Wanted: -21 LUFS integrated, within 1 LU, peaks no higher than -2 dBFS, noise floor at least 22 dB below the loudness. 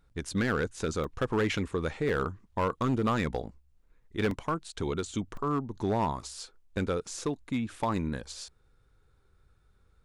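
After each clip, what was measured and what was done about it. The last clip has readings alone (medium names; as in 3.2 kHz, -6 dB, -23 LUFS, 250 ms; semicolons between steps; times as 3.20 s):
clipped samples 1.3%; clipping level -21.5 dBFS; dropouts 5; longest dropout 2.4 ms; loudness -32.0 LUFS; peak level -21.5 dBFS; loudness target -21.0 LUFS
-> clip repair -21.5 dBFS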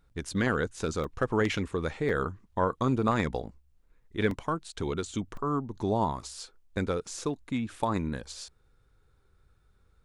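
clipped samples 0.0%; dropouts 5; longest dropout 2.4 ms
-> interpolate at 0.29/1.04/2.09/4.31/5.37 s, 2.4 ms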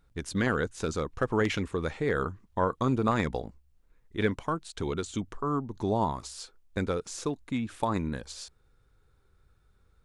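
dropouts 0; loudness -31.0 LUFS; peak level -12.5 dBFS; loudness target -21.0 LUFS
-> trim +10 dB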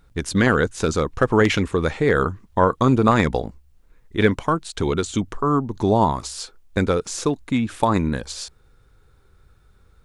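loudness -21.0 LUFS; peak level -2.5 dBFS; noise floor -56 dBFS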